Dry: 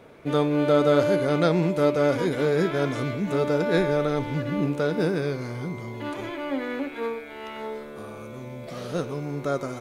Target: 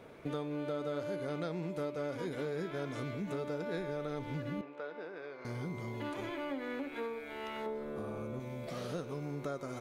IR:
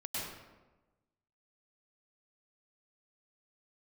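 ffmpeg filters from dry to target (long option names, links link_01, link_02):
-filter_complex "[0:a]asettb=1/sr,asplit=3[link_01][link_02][link_03];[link_01]atrim=end=7.664[link_04];[link_02]atrim=start=7.66:end=8.4,asetpts=PTS-STARTPTS,afade=type=in:duration=0.004:curve=qsin,afade=type=out:start_time=0.736:duration=0.004:curve=qsin,tiltshelf=frequency=1300:gain=5.5[link_05];[link_03]atrim=start=8.396[link_06];[link_04][link_05]acrossfade=duration=0.004:curve1=hsin:curve2=qsin[link_07];[link_07][link_06]acrossfade=duration=0.004:curve1=qsin:curve2=hsin,acompressor=threshold=-32dB:ratio=5,asettb=1/sr,asplit=3[link_08][link_09][link_10];[link_08]atrim=end=4.614[link_11];[link_09]atrim=start=4.61:end=5.45,asetpts=PTS-STARTPTS,afade=type=in:duration=0.004:curve=qsin,afade=type=out:start_time=0.836:duration=0.004:curve=qsin,highpass=550,lowpass=2500[link_12];[link_10]atrim=start=5.446[link_13];[link_11][link_12]acrossfade=duration=0.004:curve1=hsin:curve2=qsin[link_14];[link_14][link_13]acrossfade=duration=0.004:curve1=qsin:curve2=hsin,volume=-4dB"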